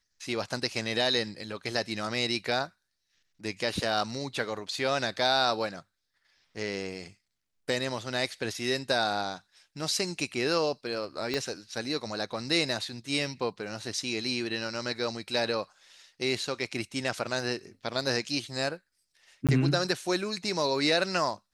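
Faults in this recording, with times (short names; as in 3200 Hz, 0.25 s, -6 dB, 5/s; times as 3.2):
11.34 pop -16 dBFS
19.47–19.49 gap 17 ms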